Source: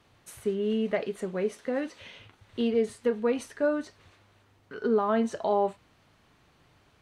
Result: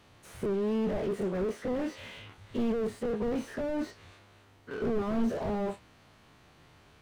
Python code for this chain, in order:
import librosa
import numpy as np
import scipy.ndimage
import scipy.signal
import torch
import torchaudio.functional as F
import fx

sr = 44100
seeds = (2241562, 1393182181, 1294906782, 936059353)

y = fx.spec_dilate(x, sr, span_ms=60)
y = fx.slew_limit(y, sr, full_power_hz=15.0)